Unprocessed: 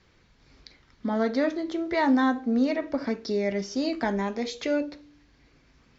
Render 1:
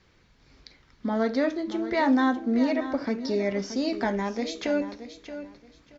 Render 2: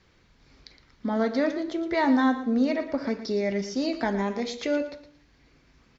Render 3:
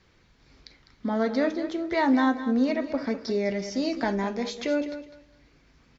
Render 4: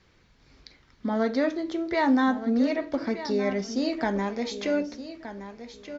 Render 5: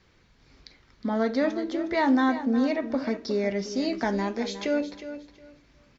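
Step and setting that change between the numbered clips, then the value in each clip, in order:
repeating echo, delay time: 626, 115, 203, 1,220, 362 milliseconds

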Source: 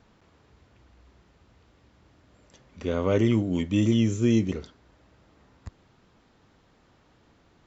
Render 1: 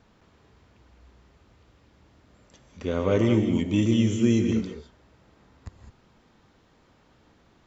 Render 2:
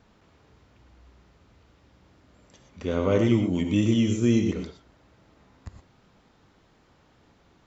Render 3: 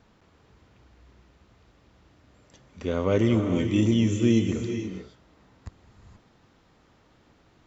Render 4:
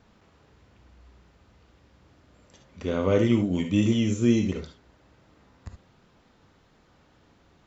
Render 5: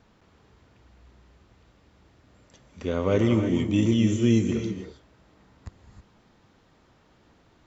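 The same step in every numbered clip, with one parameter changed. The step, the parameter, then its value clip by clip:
reverb whose tail is shaped and stops, gate: 230, 140, 500, 90, 340 milliseconds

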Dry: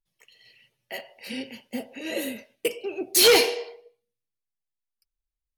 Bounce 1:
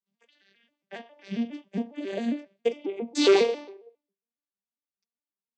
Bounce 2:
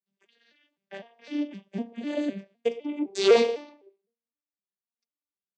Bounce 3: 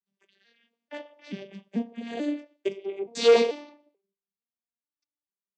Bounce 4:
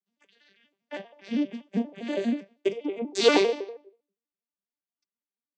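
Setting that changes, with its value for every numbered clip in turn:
vocoder with an arpeggio as carrier, a note every: 136, 254, 438, 80 milliseconds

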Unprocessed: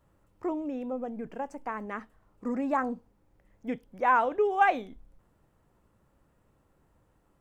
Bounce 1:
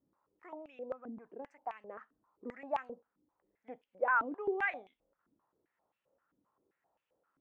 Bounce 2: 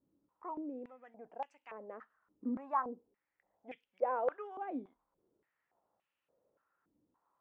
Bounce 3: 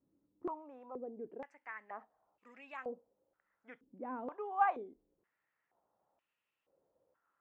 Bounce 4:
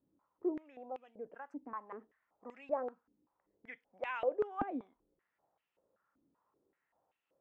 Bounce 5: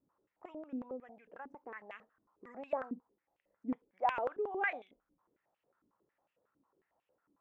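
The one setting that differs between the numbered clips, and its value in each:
band-pass on a step sequencer, speed: 7.6, 3.5, 2.1, 5.2, 11 Hertz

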